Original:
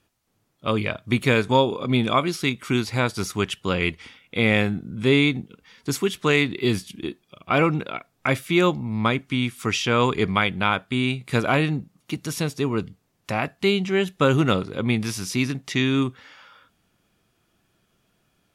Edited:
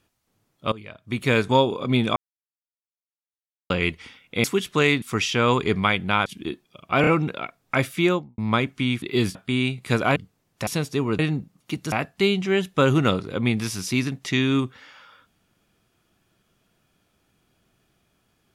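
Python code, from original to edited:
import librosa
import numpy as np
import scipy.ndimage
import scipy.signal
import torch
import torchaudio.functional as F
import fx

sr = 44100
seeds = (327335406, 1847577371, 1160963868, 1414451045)

y = fx.studio_fade_out(x, sr, start_s=8.51, length_s=0.39)
y = fx.edit(y, sr, fx.fade_in_from(start_s=0.72, length_s=0.64, curve='qua', floor_db=-17.5),
    fx.silence(start_s=2.16, length_s=1.54),
    fx.cut(start_s=4.44, length_s=1.49),
    fx.swap(start_s=6.51, length_s=0.33, other_s=9.54, other_length_s=1.24),
    fx.stutter(start_s=7.59, slice_s=0.03, count=3),
    fx.swap(start_s=11.59, length_s=0.73, other_s=12.84, other_length_s=0.51), tone=tone)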